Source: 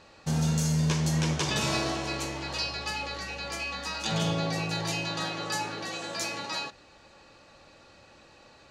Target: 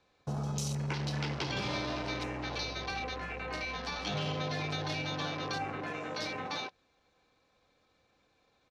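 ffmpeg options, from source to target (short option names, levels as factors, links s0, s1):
-filter_complex "[0:a]afwtdn=0.0126,asetrate=40440,aresample=44100,atempo=1.09051,acrossover=split=170|730[s0][s1][s2];[s0]acompressor=threshold=0.00794:ratio=4[s3];[s1]acompressor=threshold=0.0126:ratio=4[s4];[s2]acompressor=threshold=0.0158:ratio=4[s5];[s3][s4][s5]amix=inputs=3:normalize=0"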